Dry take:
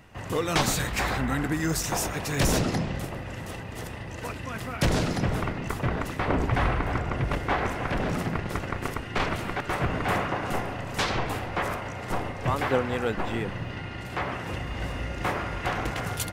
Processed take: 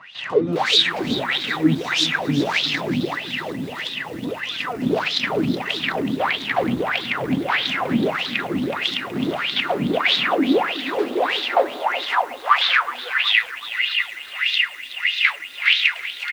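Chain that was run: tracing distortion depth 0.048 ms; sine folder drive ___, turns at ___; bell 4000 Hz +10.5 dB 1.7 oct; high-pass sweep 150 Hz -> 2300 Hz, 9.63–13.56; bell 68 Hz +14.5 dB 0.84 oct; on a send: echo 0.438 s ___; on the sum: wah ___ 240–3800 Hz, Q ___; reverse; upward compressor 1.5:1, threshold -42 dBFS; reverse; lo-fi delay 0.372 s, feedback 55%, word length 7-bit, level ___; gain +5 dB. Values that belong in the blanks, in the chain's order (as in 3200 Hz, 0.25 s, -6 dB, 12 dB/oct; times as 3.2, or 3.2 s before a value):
11 dB, -11 dBFS, -17 dB, 1.6 Hz, 8.3, -13 dB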